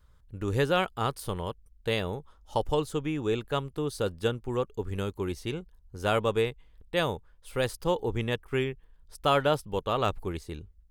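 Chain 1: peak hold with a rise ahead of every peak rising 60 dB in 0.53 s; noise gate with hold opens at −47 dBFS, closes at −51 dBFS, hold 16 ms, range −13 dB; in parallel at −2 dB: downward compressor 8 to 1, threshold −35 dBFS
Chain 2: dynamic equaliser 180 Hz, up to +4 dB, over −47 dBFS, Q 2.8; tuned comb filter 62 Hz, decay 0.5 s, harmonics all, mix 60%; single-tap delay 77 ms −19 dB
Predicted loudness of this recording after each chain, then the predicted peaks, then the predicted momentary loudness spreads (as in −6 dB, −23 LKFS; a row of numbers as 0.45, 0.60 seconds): −27.5, −35.5 LKFS; −8.0, −16.5 dBFS; 11, 12 LU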